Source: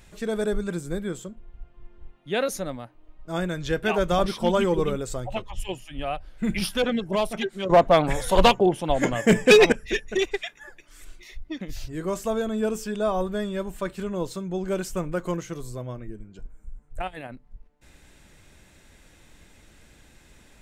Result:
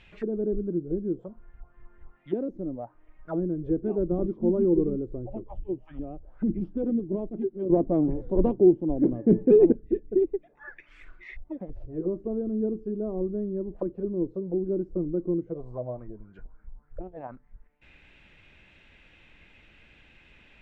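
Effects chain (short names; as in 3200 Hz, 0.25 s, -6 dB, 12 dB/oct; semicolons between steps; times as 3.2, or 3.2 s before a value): envelope low-pass 330–3200 Hz down, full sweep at -26.5 dBFS; gain -5 dB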